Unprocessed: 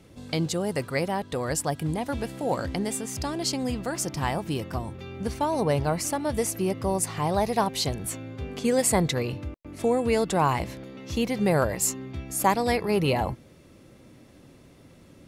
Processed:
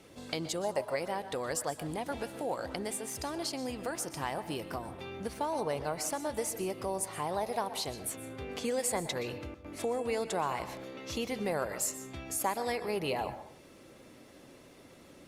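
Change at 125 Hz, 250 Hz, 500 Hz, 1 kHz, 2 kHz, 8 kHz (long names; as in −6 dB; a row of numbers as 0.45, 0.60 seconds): −15.0, −11.0, −7.5, −7.5, −7.0, −6.5 decibels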